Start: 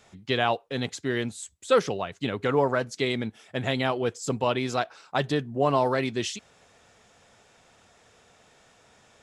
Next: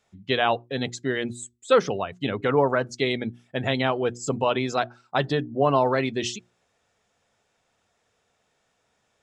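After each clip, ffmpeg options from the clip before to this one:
-af "afftdn=nr=15:nf=-41,bandreject=f=60:t=h:w=6,bandreject=f=120:t=h:w=6,bandreject=f=180:t=h:w=6,bandreject=f=240:t=h:w=6,bandreject=f=300:t=h:w=6,bandreject=f=360:t=h:w=6,volume=1.33"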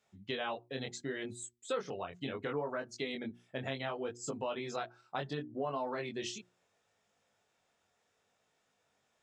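-af "lowshelf=f=75:g=-10.5,flanger=delay=19:depth=3.8:speed=0.7,acompressor=threshold=0.0178:ratio=2.5,volume=0.708"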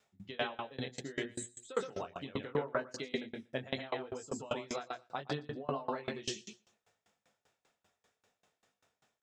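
-filter_complex "[0:a]asplit=2[s0][s1];[s1]aecho=0:1:119|238|357:0.473|0.109|0.025[s2];[s0][s2]amix=inputs=2:normalize=0,aeval=exprs='val(0)*pow(10,-26*if(lt(mod(5.1*n/s,1),2*abs(5.1)/1000),1-mod(5.1*n/s,1)/(2*abs(5.1)/1000),(mod(5.1*n/s,1)-2*abs(5.1)/1000)/(1-2*abs(5.1)/1000))/20)':c=same,volume=2.24"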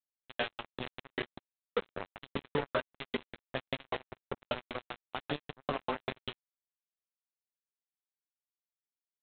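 -af "flanger=delay=8.7:depth=1.9:regen=-76:speed=0.27:shape=sinusoidal,aresample=8000,acrusher=bits=5:mix=0:aa=0.5,aresample=44100,volume=2"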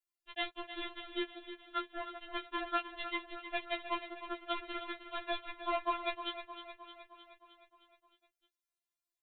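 -filter_complex "[0:a]asplit=2[s0][s1];[s1]aecho=0:1:309|618|927|1236|1545|1854|2163:0.282|0.169|0.101|0.0609|0.0365|0.0219|0.0131[s2];[s0][s2]amix=inputs=2:normalize=0,afftfilt=real='re*4*eq(mod(b,16),0)':imag='im*4*eq(mod(b,16),0)':win_size=2048:overlap=0.75,volume=1.5"

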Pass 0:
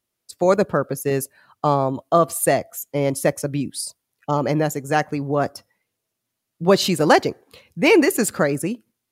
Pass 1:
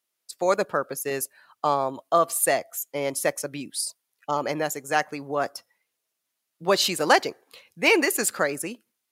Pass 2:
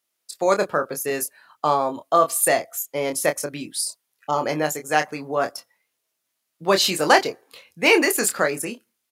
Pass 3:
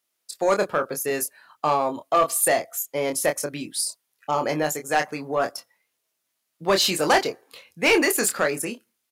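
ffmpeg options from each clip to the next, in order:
-af "highpass=f=870:p=1"
-filter_complex "[0:a]asplit=2[s0][s1];[s1]adelay=26,volume=0.447[s2];[s0][s2]amix=inputs=2:normalize=0,volume=1.33"
-af "asoftclip=type=tanh:threshold=0.282"

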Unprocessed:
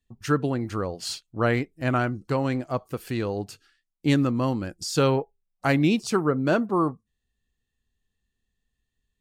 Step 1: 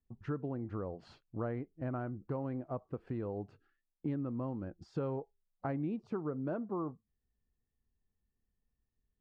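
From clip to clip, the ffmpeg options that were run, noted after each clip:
-af "lowpass=1000,acompressor=threshold=0.0224:ratio=3,volume=0.631"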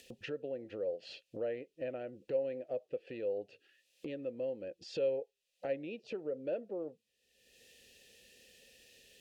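-filter_complex "[0:a]asplit=3[s0][s1][s2];[s0]bandpass=f=530:t=q:w=8,volume=1[s3];[s1]bandpass=f=1840:t=q:w=8,volume=0.501[s4];[s2]bandpass=f=2480:t=q:w=8,volume=0.355[s5];[s3][s4][s5]amix=inputs=3:normalize=0,aexciter=amount=7.9:drive=6.4:freq=2600,acompressor=mode=upward:threshold=0.00355:ratio=2.5,volume=3.35"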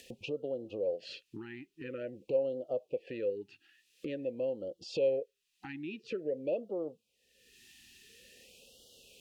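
-af "afftfilt=real='re*(1-between(b*sr/1024,530*pow(2000/530,0.5+0.5*sin(2*PI*0.48*pts/sr))/1.41,530*pow(2000/530,0.5+0.5*sin(2*PI*0.48*pts/sr))*1.41))':imag='im*(1-between(b*sr/1024,530*pow(2000/530,0.5+0.5*sin(2*PI*0.48*pts/sr))/1.41,530*pow(2000/530,0.5+0.5*sin(2*PI*0.48*pts/sr))*1.41))':win_size=1024:overlap=0.75,volume=1.5"

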